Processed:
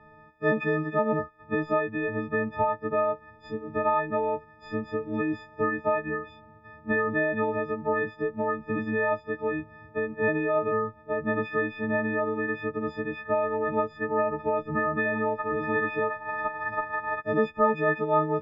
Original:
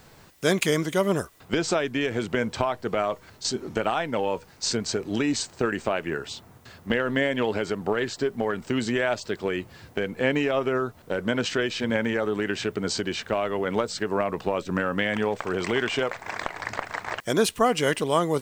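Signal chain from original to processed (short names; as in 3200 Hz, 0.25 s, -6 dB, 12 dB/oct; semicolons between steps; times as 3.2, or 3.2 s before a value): frequency quantiser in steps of 6 st; LPF 1700 Hz 24 dB/oct; gain -3 dB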